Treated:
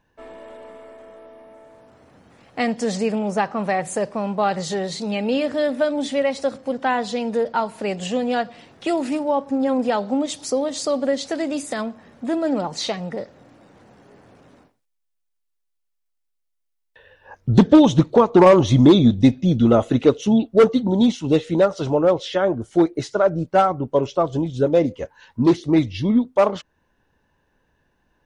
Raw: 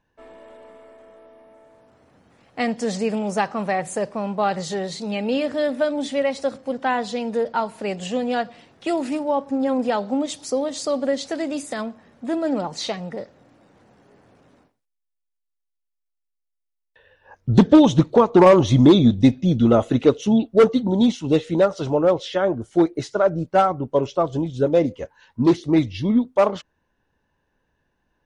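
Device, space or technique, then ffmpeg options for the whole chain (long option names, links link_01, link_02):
parallel compression: -filter_complex "[0:a]asettb=1/sr,asplit=3[link_01][link_02][link_03];[link_01]atrim=end=3.124[link_04];[link_02]atrim=start=3.12:end=3.64,asetpts=PTS-STARTPTS,afade=type=in:duration=0.004:curve=qsin,afade=type=out:start_time=0.516:duration=0.004:curve=qsin,highshelf=frequency=3900:gain=-7.5[link_05];[link_03]atrim=start=3.636[link_06];[link_04][link_05]acrossfade=duration=0.004:curve1=hsin:curve2=qsin[link_07];[link_07][link_06]acrossfade=duration=0.004:curve1=qsin:curve2=hsin,asplit=2[link_08][link_09];[link_09]acompressor=threshold=-34dB:ratio=6,volume=-3dB[link_10];[link_08][link_10]amix=inputs=2:normalize=0"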